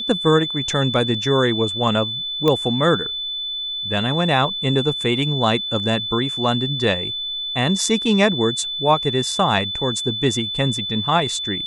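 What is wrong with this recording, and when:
tone 3500 Hz -24 dBFS
2.48 pop -7 dBFS

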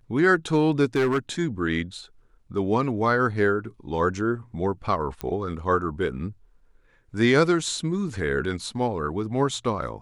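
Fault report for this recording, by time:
0.95–1.18 clipped -17.5 dBFS
5.21 pop -16 dBFS

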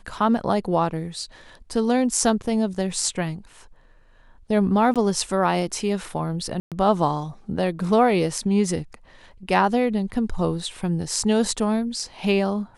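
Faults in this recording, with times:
4.94–4.96 gap 17 ms
6.6–6.72 gap 0.117 s

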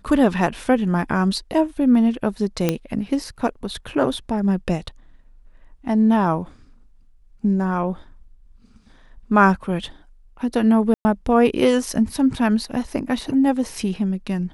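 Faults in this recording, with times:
2.69 pop -5 dBFS
10.94–11.05 gap 0.11 s

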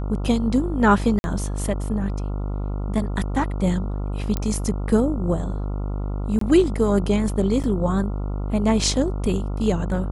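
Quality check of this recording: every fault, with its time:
buzz 50 Hz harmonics 28 -26 dBFS
1.19–1.24 gap 51 ms
4.37 pop -11 dBFS
6.39–6.41 gap 23 ms
7.63–7.64 gap 7.4 ms

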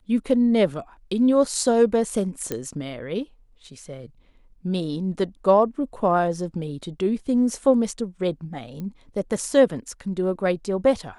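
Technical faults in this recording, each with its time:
2.52 pop -12 dBFS
8.8 pop -23 dBFS

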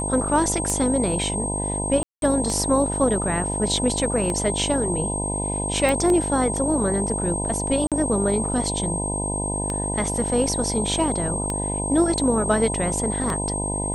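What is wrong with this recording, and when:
buzz 50 Hz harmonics 20 -28 dBFS
tick 33 1/3 rpm -12 dBFS
tone 8400 Hz -27 dBFS
2.03–2.22 gap 0.192 s
5.89 pop -10 dBFS
7.87–7.92 gap 47 ms

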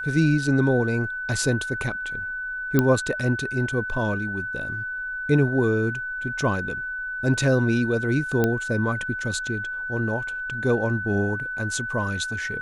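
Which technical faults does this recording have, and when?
tone 1500 Hz -28 dBFS
2.79 pop -6 dBFS
8.44 pop -9 dBFS

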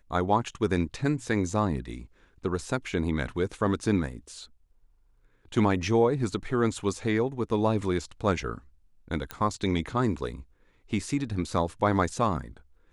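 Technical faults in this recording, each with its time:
9.31 pop -17 dBFS

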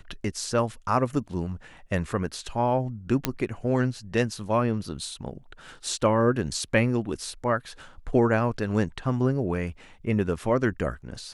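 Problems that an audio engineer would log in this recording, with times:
3.25 pop -7 dBFS

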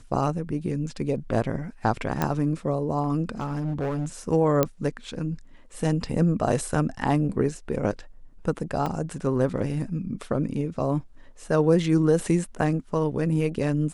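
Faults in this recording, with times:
2.22 pop -10 dBFS
3.4–4.06 clipped -24 dBFS
4.63 pop -7 dBFS
8.86 gap 3.3 ms

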